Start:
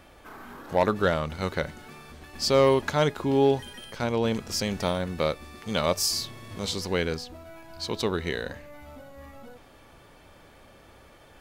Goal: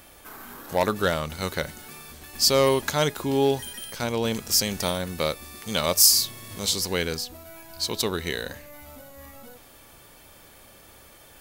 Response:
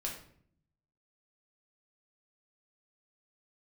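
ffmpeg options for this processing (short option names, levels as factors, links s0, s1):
-af "aemphasis=mode=production:type=75fm"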